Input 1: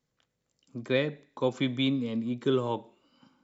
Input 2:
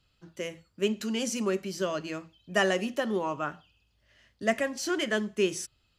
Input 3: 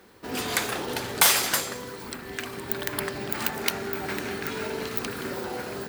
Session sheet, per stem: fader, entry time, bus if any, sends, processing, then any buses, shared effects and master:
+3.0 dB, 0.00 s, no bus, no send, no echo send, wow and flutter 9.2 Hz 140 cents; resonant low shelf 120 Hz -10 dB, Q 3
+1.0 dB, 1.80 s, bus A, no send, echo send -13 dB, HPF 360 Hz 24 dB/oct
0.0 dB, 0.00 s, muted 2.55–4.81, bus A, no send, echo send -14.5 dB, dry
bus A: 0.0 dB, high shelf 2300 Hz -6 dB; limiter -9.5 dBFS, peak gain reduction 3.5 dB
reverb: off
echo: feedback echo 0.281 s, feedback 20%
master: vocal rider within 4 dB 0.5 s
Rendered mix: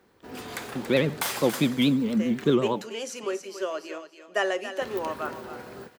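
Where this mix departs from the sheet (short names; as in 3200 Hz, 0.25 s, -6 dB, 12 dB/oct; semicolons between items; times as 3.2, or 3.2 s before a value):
stem 3 0.0 dB -> -7.0 dB; master: missing vocal rider within 4 dB 0.5 s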